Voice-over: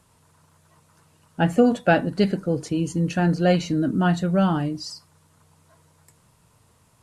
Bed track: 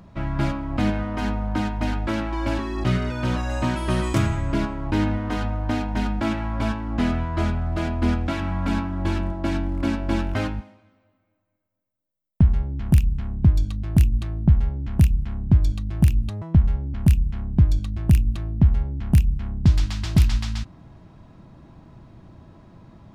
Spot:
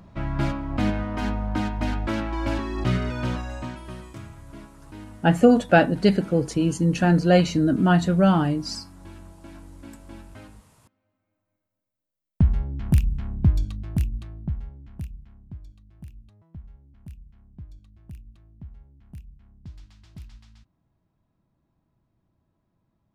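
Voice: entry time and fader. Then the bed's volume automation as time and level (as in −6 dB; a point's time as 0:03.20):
3.85 s, +2.0 dB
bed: 0:03.20 −1.5 dB
0:04.14 −19.5 dB
0:10.58 −19.5 dB
0:11.52 −2.5 dB
0:13.52 −2.5 dB
0:15.73 −25.5 dB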